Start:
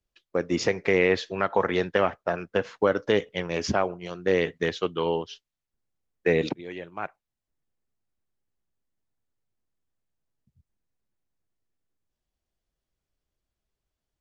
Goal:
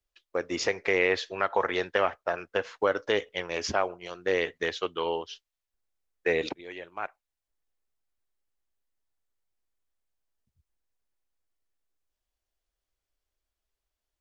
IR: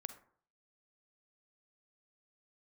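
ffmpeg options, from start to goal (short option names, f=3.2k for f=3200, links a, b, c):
-af "equalizer=f=160:w=0.71:g=-14"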